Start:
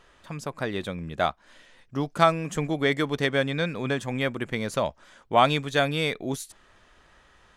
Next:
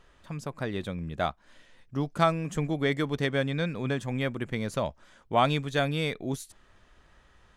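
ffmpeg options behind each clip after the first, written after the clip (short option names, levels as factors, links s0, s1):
-af "lowshelf=f=230:g=7.5,volume=0.562"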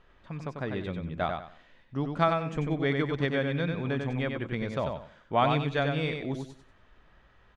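-af "lowpass=3500,aecho=1:1:94|188|282|376:0.562|0.152|0.041|0.0111,volume=0.841"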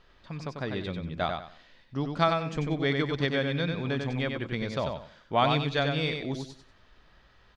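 -af "equalizer=f=4700:t=o:w=0.89:g=11.5"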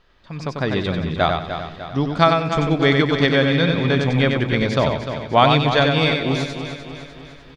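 -filter_complex "[0:a]dynaudnorm=f=260:g=3:m=3.35,asplit=2[s0][s1];[s1]aecho=0:1:300|600|900|1200|1500|1800:0.335|0.174|0.0906|0.0471|0.0245|0.0127[s2];[s0][s2]amix=inputs=2:normalize=0,volume=1.12"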